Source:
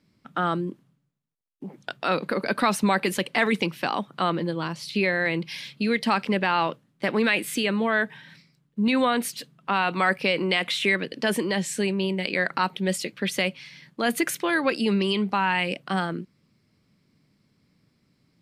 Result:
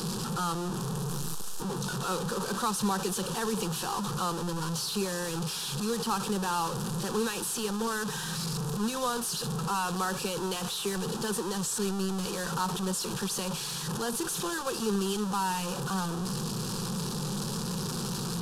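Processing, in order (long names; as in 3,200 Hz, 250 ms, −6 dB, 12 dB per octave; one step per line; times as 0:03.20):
linear delta modulator 64 kbit/s, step −19 dBFS
phaser with its sweep stopped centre 420 Hz, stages 8
level −5.5 dB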